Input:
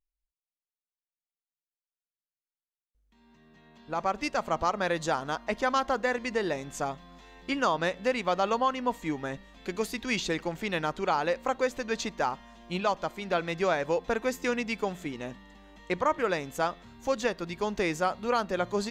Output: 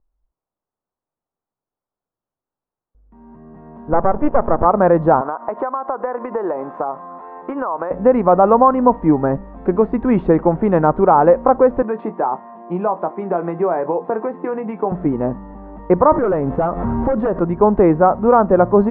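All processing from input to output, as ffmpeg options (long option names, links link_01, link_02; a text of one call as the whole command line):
ffmpeg -i in.wav -filter_complex "[0:a]asettb=1/sr,asplit=3[link_01][link_02][link_03];[link_01]atrim=end=3.934[link_04];[link_02]atrim=start=3.93:end=4.65,asetpts=PTS-STARTPTS,afade=type=in:duration=0.004:curve=qsin,afade=type=out:start_time=0.716:duration=0.004:curve=qsin,equalizer=frequency=1900:width_type=o:width=2.1:gain=-3.5,acontrast=31,aeval=exprs='max(val(0),0)':channel_layout=same[link_05];[link_03]atrim=start=4.646[link_06];[link_04][link_05]acrossfade=duration=0.004:curve1=hsin:curve2=qsin[link_07];[link_07][link_06]acrossfade=duration=0.004:curve1=qsin:curve2=hsin,asettb=1/sr,asplit=3[link_08][link_09][link_10];[link_08]atrim=end=5.214[link_11];[link_09]atrim=start=5.21:end=7.91,asetpts=PTS-STARTPTS,afade=type=in:duration=0.004:curve=qsin,afade=type=out:start_time=2.696:duration=0.004:curve=qsin,highpass=380,equalizer=frequency=1100:width_type=o:width=1.1:gain=6.5,acompressor=threshold=-34dB:ratio=10:attack=3.2:release=140:knee=1:detection=peak[link_12];[link_10]atrim=start=7.906[link_13];[link_11][link_12]acrossfade=duration=0.004:curve1=hsin:curve2=qsin[link_14];[link_14][link_13]acrossfade=duration=0.004:curve1=qsin:curve2=hsin,asettb=1/sr,asplit=3[link_15][link_16][link_17];[link_15]atrim=end=11.824[link_18];[link_16]atrim=start=11.82:end=14.92,asetpts=PTS-STARTPTS,afade=type=in:duration=0.004:curve=qsin,afade=type=out:start_time=3.096:duration=0.004:curve=qsin,acompressor=threshold=-30dB:ratio=4:attack=3.2:release=140:knee=1:detection=peak,highpass=frequency=200:width=0.5412,highpass=frequency=200:width=1.3066,equalizer=frequency=250:width_type=q:width=4:gain=-9,equalizer=frequency=530:width_type=q:width=4:gain=-6,equalizer=frequency=1400:width_type=q:width=4:gain=-4,lowpass=frequency=4100:width=0.5412,lowpass=frequency=4100:width=1.3066,asplit=2[link_19][link_20];[link_20]adelay=23,volume=-11dB[link_21];[link_19][link_21]amix=inputs=2:normalize=0,atrim=end_sample=136710[link_22];[link_17]atrim=start=14.916[link_23];[link_18][link_22]acrossfade=duration=0.004:curve1=hsin:curve2=qsin[link_24];[link_24][link_23]acrossfade=duration=0.004:curve1=qsin:curve2=hsin,asettb=1/sr,asplit=3[link_25][link_26][link_27];[link_25]atrim=end=16.124[link_28];[link_26]atrim=start=16.12:end=17.4,asetpts=PTS-STARTPTS,afade=type=in:duration=0.004:curve=qsin,afade=type=out:start_time=1.276:duration=0.004:curve=qsin,aeval=exprs='0.2*sin(PI/2*3.16*val(0)/0.2)':channel_layout=same,acompressor=threshold=-32dB:ratio=12:attack=3.2:release=140:knee=1:detection=peak[link_29];[link_27]atrim=start=17.396[link_30];[link_28][link_29]acrossfade=duration=0.004:curve1=hsin:curve2=qsin[link_31];[link_31][link_30]acrossfade=duration=0.004:curve1=qsin:curve2=hsin,lowpass=frequency=1100:width=0.5412,lowpass=frequency=1100:width=1.3066,alimiter=level_in=19.5dB:limit=-1dB:release=50:level=0:latency=1,volume=-1dB" out.wav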